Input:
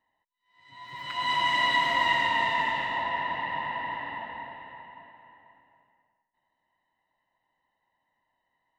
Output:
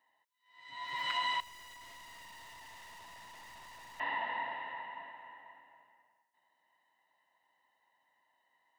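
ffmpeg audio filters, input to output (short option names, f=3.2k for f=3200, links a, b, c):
-filter_complex "[0:a]highpass=f=660:p=1,acompressor=threshold=-34dB:ratio=10,asettb=1/sr,asplit=3[a][b][c];[a]atrim=end=1.404[d];[b]atrim=start=1.4:end=4,asetpts=PTS-STARTPTS,afade=t=in:d=0.004:c=qsin,afade=t=out:st=2.596:d=0.004:c=qsin,aeval=exprs='(tanh(631*val(0)+0.3)-tanh(0.3))/631':c=same[e];[c]atrim=start=3.996[f];[d][e]acrossfade=d=0.004:c1=hsin:c2=qsin[g];[g][f]acrossfade=d=0.004:c1=qsin:c2=hsin,volume=3.5dB"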